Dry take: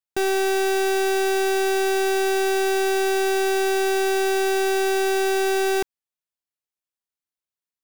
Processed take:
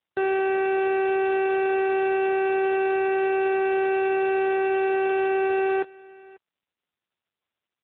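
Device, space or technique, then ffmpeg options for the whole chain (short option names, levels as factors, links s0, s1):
satellite phone: -af "highpass=310,lowpass=3200,aecho=1:1:540:0.0708" -ar 8000 -c:a libopencore_amrnb -b:a 6700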